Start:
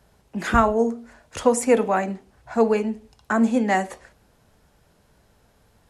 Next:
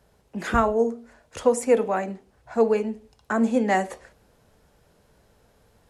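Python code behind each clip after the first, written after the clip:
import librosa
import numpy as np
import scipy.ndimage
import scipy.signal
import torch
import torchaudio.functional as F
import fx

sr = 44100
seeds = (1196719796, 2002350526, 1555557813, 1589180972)

y = fx.peak_eq(x, sr, hz=480.0, db=4.5, octaves=0.63)
y = fx.rider(y, sr, range_db=10, speed_s=0.5)
y = y * 10.0 ** (-2.0 / 20.0)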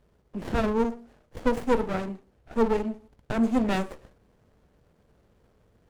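y = fx.running_max(x, sr, window=33)
y = y * 10.0 ** (-1.5 / 20.0)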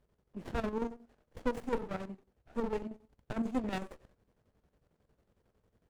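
y = fx.chopper(x, sr, hz=11.0, depth_pct=60, duty_pct=60)
y = y * 10.0 ** (-8.5 / 20.0)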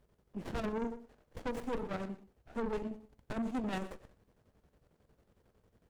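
y = 10.0 ** (-35.0 / 20.0) * np.tanh(x / 10.0 ** (-35.0 / 20.0))
y = y + 10.0 ** (-17.5 / 20.0) * np.pad(y, (int(121 * sr / 1000.0), 0))[:len(y)]
y = y * 10.0 ** (3.5 / 20.0)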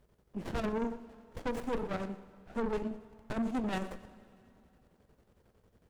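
y = fx.rev_plate(x, sr, seeds[0], rt60_s=2.8, hf_ratio=0.85, predelay_ms=0, drr_db=16.0)
y = y * 10.0 ** (2.5 / 20.0)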